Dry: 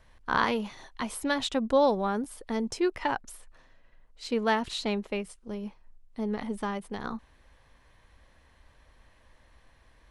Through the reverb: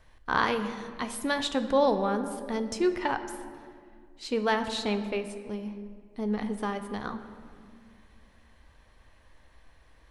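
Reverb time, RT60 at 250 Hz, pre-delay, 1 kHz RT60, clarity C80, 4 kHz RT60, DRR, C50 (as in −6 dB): 2.1 s, 2.6 s, 3 ms, 1.8 s, 11.0 dB, 1.2 s, 8.0 dB, 10.5 dB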